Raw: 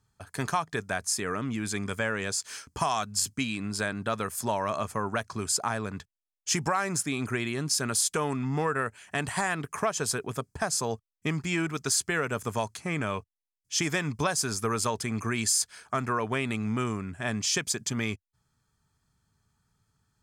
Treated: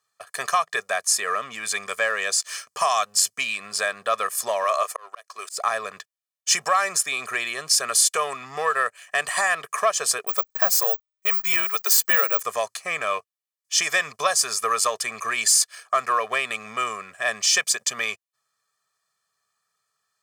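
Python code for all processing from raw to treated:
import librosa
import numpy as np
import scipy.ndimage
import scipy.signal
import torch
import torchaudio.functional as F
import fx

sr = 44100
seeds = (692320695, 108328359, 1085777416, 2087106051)

y = fx.chain(x, sr, fx.highpass(hz=310.0, slope=24),
    fx.high_shelf(hz=8100.0, db=5.5),
    fx.auto_swell(attack_ms=391.0), at=(4.64, 5.57))
y = fx.chain(y, sr, fx.high_shelf(hz=7700.0, db=-3.0),
    fx.resample_bad(factor=2, down='none', up='zero_stuff'), at=(10.27, 12.42))
y = fx.leveller(y, sr, passes=1)
y = scipy.signal.sosfilt(scipy.signal.butter(2, 670.0, 'highpass', fs=sr, output='sos'), y)
y = y + 0.77 * np.pad(y, (int(1.7 * sr / 1000.0), 0))[:len(y)]
y = y * 10.0 ** (2.5 / 20.0)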